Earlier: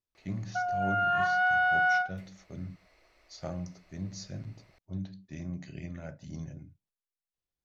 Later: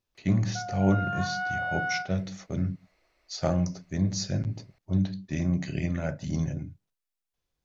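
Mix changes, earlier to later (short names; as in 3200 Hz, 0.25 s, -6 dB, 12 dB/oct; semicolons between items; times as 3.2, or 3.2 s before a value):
speech +11.5 dB; background -5.5 dB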